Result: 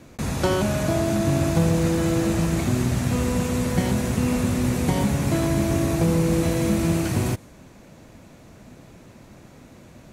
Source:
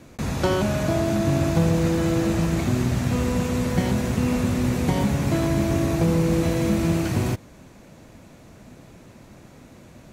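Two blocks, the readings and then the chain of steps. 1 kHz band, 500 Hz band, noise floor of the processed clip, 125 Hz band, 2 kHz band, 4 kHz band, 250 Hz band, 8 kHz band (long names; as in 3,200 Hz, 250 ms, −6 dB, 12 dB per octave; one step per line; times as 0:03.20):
0.0 dB, 0.0 dB, −48 dBFS, 0.0 dB, 0.0 dB, +0.5 dB, 0.0 dB, +3.5 dB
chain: dynamic equaliser 9,900 Hz, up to +6 dB, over −56 dBFS, Q 1.1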